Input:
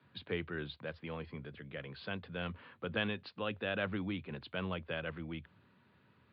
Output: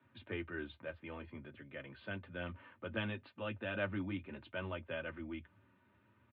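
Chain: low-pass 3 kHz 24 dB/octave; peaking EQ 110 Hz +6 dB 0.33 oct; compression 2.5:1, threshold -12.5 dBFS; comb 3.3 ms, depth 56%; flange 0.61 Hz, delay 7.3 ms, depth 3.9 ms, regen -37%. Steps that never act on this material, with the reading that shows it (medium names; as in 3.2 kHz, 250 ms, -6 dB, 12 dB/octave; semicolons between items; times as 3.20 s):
compression, threshold -12.5 dBFS: peak at its input -20.5 dBFS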